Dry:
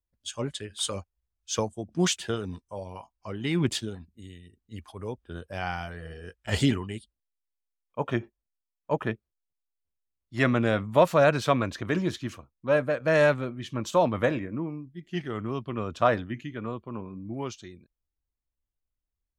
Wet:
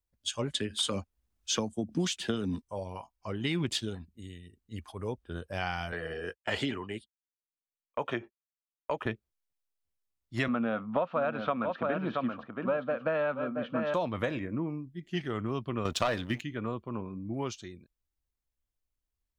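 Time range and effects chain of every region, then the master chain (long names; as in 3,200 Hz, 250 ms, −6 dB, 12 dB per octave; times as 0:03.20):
0:00.54–0:02.62: parametric band 240 Hz +10.5 dB 0.79 octaves + multiband upward and downward compressor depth 40%
0:05.92–0:09.06: downward expander −47 dBFS + bass and treble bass −10 dB, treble −8 dB + multiband upward and downward compressor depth 70%
0:10.48–0:13.94: loudspeaker in its box 190–2,700 Hz, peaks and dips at 230 Hz +9 dB, 360 Hz −5 dB, 520 Hz +3 dB, 750 Hz +5 dB, 1,300 Hz +8 dB, 2,000 Hz −9 dB + single-tap delay 676 ms −9.5 dB
0:15.85–0:16.42: high-shelf EQ 4,700 Hz +12 dB + leveller curve on the samples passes 2
whole clip: dynamic equaliser 3,500 Hz, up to +5 dB, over −43 dBFS, Q 0.91; downward compressor 6 to 1, threshold −27 dBFS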